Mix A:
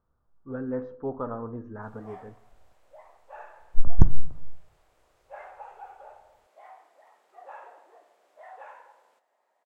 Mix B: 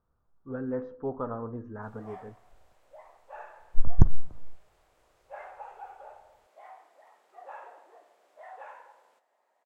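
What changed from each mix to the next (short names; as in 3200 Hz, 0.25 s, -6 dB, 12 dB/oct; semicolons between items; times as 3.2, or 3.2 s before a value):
speech: send -10.0 dB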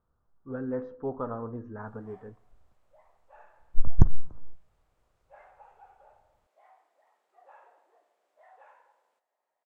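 background -10.5 dB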